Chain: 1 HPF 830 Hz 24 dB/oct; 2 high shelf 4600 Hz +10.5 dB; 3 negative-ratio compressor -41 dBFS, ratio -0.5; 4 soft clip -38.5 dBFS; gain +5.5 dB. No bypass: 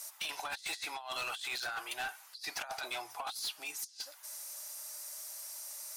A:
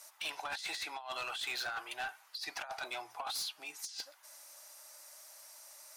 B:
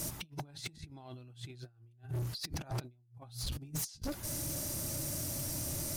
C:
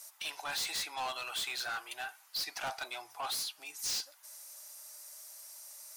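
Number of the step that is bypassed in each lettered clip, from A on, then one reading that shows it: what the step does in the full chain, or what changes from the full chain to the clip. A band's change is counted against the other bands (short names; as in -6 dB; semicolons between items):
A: 2, 8 kHz band -4.0 dB; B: 1, 125 Hz band +30.5 dB; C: 3, momentary loudness spread change +7 LU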